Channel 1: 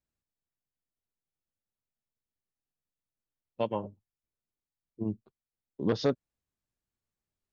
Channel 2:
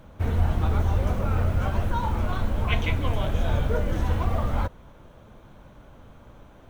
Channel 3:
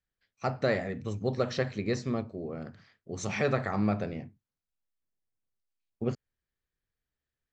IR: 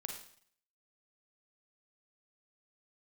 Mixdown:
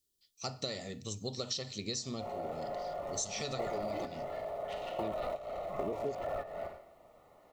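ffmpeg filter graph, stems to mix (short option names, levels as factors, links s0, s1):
-filter_complex "[0:a]lowpass=f=410:t=q:w=4.9,volume=0.596,asplit=2[s0][s1];[1:a]asoftclip=type=tanh:threshold=0.075,aeval=exprs='val(0)*sin(2*PI*630*n/s)':c=same,adelay=2000,volume=1.33,asplit=2[s2][s3];[s3]volume=0.282[s4];[2:a]aexciter=amount=11.2:drive=2.9:freq=3100,volume=0.376,asplit=2[s5][s6];[s6]volume=0.158[s7];[s1]apad=whole_len=383289[s8];[s2][s8]sidechaingate=range=0.0224:threshold=0.00112:ratio=16:detection=peak[s9];[3:a]atrim=start_sample=2205[s10];[s4][s7]amix=inputs=2:normalize=0[s11];[s11][s10]afir=irnorm=-1:irlink=0[s12];[s0][s9][s5][s12]amix=inputs=4:normalize=0,asuperstop=centerf=1600:order=20:qfactor=6.5,acompressor=threshold=0.0224:ratio=12"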